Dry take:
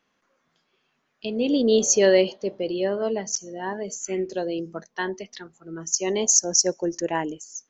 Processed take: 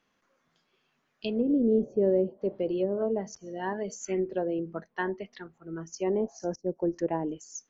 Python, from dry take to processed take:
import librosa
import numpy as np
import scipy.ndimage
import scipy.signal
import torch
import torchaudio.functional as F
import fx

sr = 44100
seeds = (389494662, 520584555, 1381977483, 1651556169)

y = fx.lowpass(x, sr, hz=2500.0, slope=12, at=(4.27, 6.4))
y = fx.env_lowpass_down(y, sr, base_hz=390.0, full_db=-19.0)
y = fx.low_shelf(y, sr, hz=120.0, db=5.0)
y = y * 10.0 ** (-2.5 / 20.0)